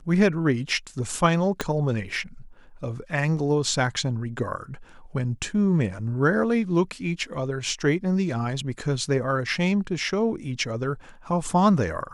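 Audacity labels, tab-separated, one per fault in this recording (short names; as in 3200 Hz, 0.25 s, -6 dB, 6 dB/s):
1.610000	1.610000	pop -9 dBFS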